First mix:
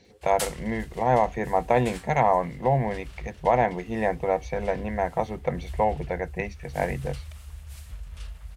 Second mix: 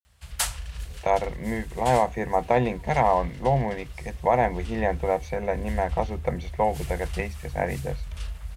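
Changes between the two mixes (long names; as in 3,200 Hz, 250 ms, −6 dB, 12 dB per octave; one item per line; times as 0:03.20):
speech: entry +0.80 s
background +5.0 dB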